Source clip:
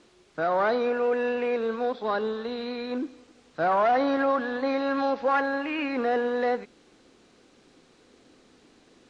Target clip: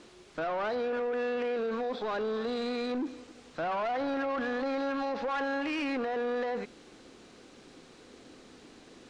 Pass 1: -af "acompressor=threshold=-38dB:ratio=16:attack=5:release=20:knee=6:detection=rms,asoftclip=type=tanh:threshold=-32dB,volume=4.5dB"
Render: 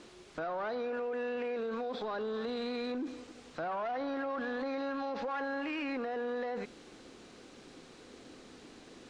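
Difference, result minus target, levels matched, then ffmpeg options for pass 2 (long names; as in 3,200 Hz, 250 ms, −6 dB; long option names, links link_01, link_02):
downward compressor: peak gain reduction +6.5 dB
-af "acompressor=threshold=-31dB:ratio=16:attack=5:release=20:knee=6:detection=rms,asoftclip=type=tanh:threshold=-32dB,volume=4.5dB"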